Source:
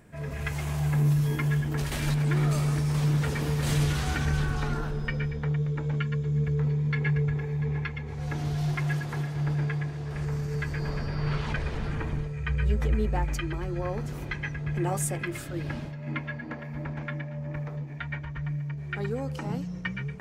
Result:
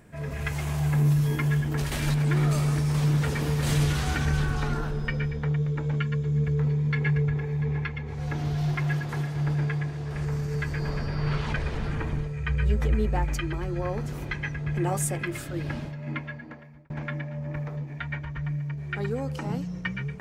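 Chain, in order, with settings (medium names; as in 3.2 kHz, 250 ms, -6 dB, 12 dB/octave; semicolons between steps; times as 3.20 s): 7.20–9.09 s: dynamic bell 9.5 kHz, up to -6 dB, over -59 dBFS, Q 0.79; 16.00–16.90 s: fade out; trim +1.5 dB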